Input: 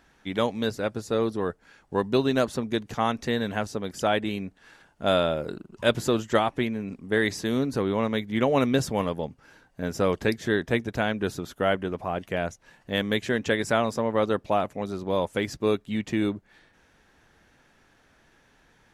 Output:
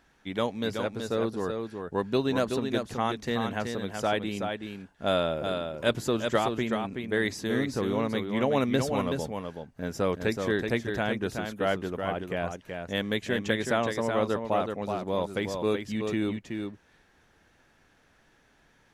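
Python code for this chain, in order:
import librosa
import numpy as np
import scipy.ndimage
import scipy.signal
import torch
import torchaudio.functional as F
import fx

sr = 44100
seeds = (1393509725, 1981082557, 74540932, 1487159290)

y = x + 10.0 ** (-5.5 / 20.0) * np.pad(x, (int(376 * sr / 1000.0), 0))[:len(x)]
y = F.gain(torch.from_numpy(y), -3.5).numpy()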